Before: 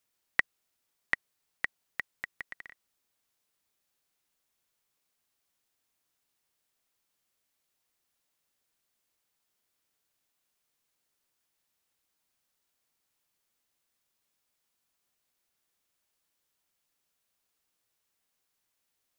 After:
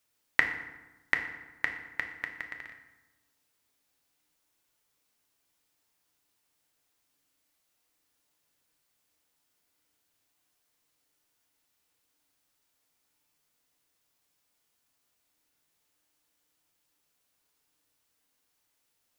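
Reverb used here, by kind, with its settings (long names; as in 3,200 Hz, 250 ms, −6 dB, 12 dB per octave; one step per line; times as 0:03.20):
feedback delay network reverb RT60 1.1 s, low-frequency decay 1.25×, high-frequency decay 0.65×, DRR 3.5 dB
level +2.5 dB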